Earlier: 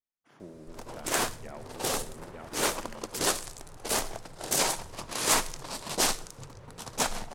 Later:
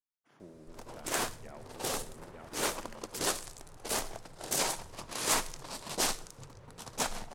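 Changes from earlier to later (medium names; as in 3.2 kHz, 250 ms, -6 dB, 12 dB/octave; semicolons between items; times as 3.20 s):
speech -5.5 dB; background -4.5 dB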